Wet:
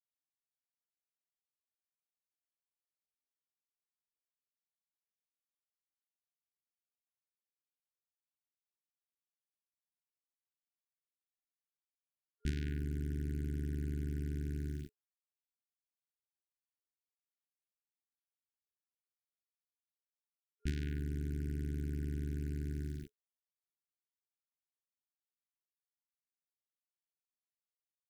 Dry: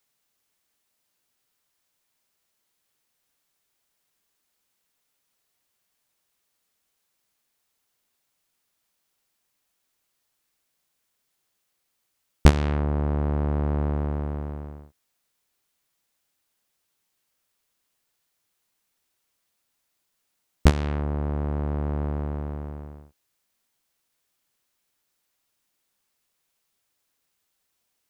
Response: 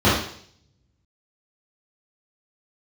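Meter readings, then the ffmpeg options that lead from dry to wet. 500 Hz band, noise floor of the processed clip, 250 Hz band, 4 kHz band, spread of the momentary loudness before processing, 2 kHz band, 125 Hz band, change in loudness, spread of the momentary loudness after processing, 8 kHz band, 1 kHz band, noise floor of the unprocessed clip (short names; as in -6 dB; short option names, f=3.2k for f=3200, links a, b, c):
-18.5 dB, under -85 dBFS, -12.5 dB, -17.0 dB, 15 LU, -15.0 dB, -12.5 dB, -13.5 dB, 5 LU, -15.5 dB, under -35 dB, -76 dBFS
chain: -af "areverse,acompressor=threshold=-38dB:ratio=6,areverse,tremolo=f=200:d=0.519,acrusher=bits=7:mix=0:aa=0.5,afftfilt=real='re*(1-between(b*sr/4096,420,1400))':imag='im*(1-between(b*sr/4096,420,1400))':win_size=4096:overlap=0.75,volume=4dB"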